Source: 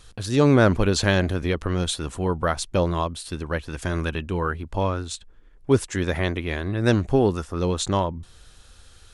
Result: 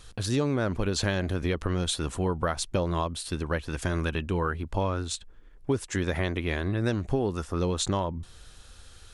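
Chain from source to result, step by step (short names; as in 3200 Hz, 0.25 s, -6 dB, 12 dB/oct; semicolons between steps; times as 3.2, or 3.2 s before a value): compressor 6:1, threshold -23 dBFS, peak gain reduction 11.5 dB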